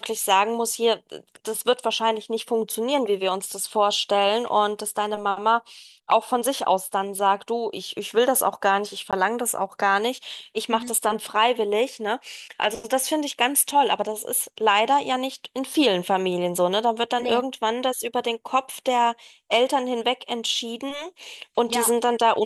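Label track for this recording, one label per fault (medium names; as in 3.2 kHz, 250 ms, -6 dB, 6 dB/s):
9.110000	9.130000	dropout 17 ms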